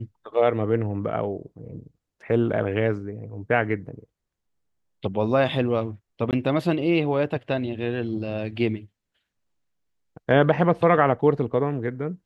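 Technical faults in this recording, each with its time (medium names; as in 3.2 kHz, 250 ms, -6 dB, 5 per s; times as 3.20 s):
6.31–6.33 s: dropout 18 ms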